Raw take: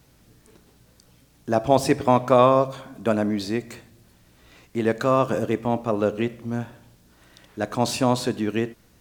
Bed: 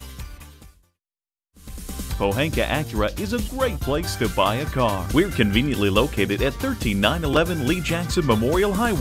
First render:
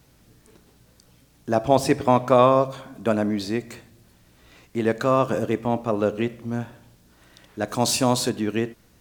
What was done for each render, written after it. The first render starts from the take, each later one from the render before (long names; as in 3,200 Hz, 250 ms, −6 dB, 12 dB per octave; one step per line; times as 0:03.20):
0:07.68–0:08.30: bass and treble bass 0 dB, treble +8 dB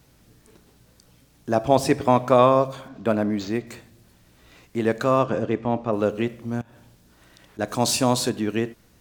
0:02.88–0:03.67: linearly interpolated sample-rate reduction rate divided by 4×
0:05.23–0:05.93: high-frequency loss of the air 120 metres
0:06.61–0:07.59: downward compressor 10 to 1, threshold −45 dBFS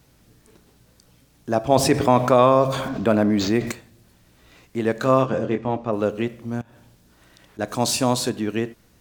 0:01.72–0:03.72: envelope flattener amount 50%
0:04.94–0:05.76: double-tracking delay 23 ms −6 dB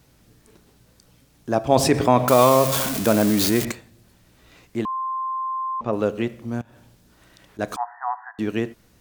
0:02.28–0:03.65: spike at every zero crossing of −13.5 dBFS
0:04.85–0:05.81: beep over 1,050 Hz −23.5 dBFS
0:07.76–0:08.39: linear-phase brick-wall band-pass 690–2,000 Hz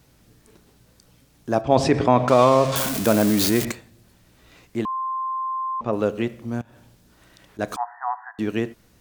0:01.61–0:02.76: high-frequency loss of the air 100 metres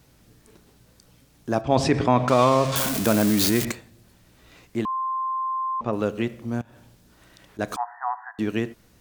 dynamic equaliser 550 Hz, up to −4 dB, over −26 dBFS, Q 0.87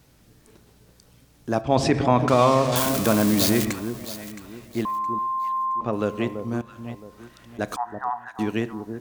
delay that swaps between a low-pass and a high-pass 334 ms, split 990 Hz, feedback 54%, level −8 dB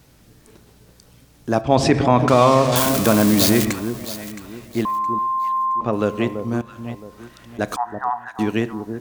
level +4.5 dB
brickwall limiter −2 dBFS, peak gain reduction 1.5 dB